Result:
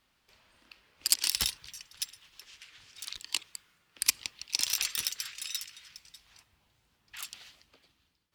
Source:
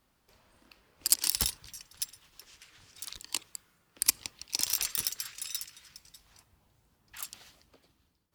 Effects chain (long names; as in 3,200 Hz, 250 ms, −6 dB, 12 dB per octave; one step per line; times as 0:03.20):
parametric band 2,900 Hz +10.5 dB 2.3 octaves
level −5 dB